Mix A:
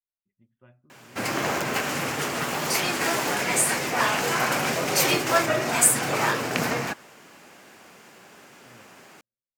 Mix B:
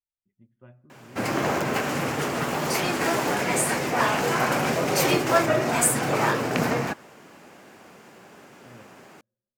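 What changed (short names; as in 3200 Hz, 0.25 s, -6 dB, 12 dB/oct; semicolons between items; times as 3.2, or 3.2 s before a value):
speech: send +11.5 dB; master: add tilt shelf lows +4 dB, about 1300 Hz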